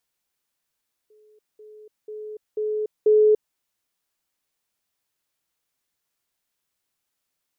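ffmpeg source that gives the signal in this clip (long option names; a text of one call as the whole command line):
ffmpeg -f lavfi -i "aevalsrc='pow(10,(-52.5+10*floor(t/0.49))/20)*sin(2*PI*427*t)*clip(min(mod(t,0.49),0.29-mod(t,0.49))/0.005,0,1)':duration=2.45:sample_rate=44100" out.wav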